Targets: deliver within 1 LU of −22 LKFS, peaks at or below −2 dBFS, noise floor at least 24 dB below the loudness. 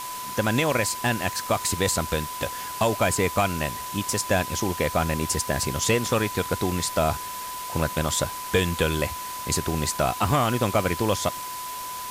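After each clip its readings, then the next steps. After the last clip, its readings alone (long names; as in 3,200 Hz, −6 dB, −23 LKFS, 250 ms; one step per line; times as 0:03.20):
interfering tone 1,000 Hz; level of the tone −33 dBFS; background noise floor −34 dBFS; target noise floor −49 dBFS; integrated loudness −25.0 LKFS; sample peak −8.0 dBFS; target loudness −22.0 LKFS
→ notch filter 1,000 Hz, Q 30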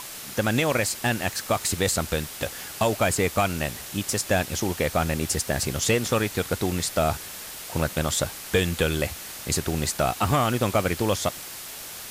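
interfering tone none found; background noise floor −38 dBFS; target noise floor −50 dBFS
→ broadband denoise 12 dB, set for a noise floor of −38 dBFS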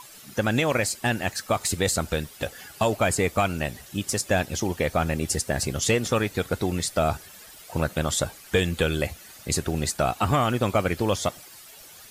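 background noise floor −47 dBFS; target noise floor −50 dBFS
→ broadband denoise 6 dB, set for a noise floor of −47 dBFS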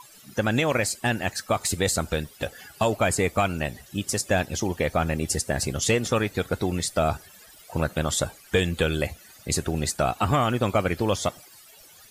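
background noise floor −51 dBFS; integrated loudness −25.5 LKFS; sample peak −9.0 dBFS; target loudness −22.0 LKFS
→ level +3.5 dB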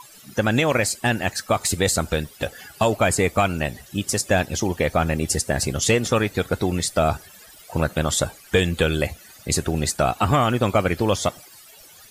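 integrated loudness −22.0 LKFS; sample peak −5.5 dBFS; background noise floor −47 dBFS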